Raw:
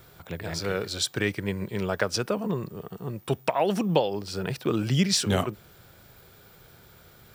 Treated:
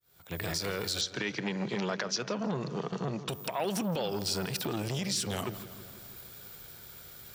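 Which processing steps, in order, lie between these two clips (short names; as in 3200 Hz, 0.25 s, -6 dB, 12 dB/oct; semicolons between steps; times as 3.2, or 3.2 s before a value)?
opening faded in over 0.70 s; 1.01–3.29 Chebyshev band-pass 130–6500 Hz, order 5; gate -42 dBFS, range -11 dB; high shelf 3000 Hz +11.5 dB; compressor 4:1, threshold -36 dBFS, peak gain reduction 20 dB; limiter -29 dBFS, peak gain reduction 9.5 dB; darkening echo 0.165 s, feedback 64%, low-pass 3600 Hz, level -15 dB; core saturation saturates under 540 Hz; gain +8.5 dB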